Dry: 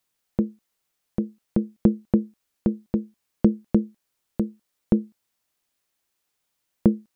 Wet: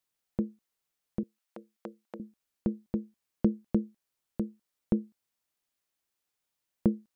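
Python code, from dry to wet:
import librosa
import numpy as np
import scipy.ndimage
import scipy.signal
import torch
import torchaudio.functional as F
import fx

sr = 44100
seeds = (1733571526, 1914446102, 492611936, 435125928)

y = fx.highpass(x, sr, hz=740.0, slope=12, at=(1.23, 2.2))
y = y * librosa.db_to_amplitude(-7.5)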